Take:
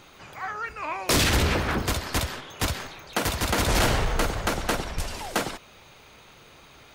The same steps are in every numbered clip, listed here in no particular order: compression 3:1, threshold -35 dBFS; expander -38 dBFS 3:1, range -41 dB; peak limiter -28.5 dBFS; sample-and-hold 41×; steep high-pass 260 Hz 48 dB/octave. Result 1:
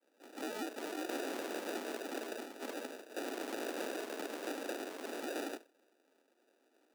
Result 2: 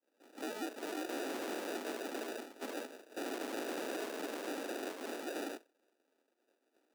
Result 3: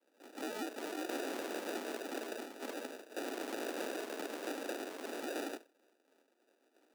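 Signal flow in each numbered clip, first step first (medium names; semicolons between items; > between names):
peak limiter > expander > sample-and-hold > steep high-pass > compression; sample-and-hold > steep high-pass > peak limiter > expander > compression; peak limiter > sample-and-hold > expander > steep high-pass > compression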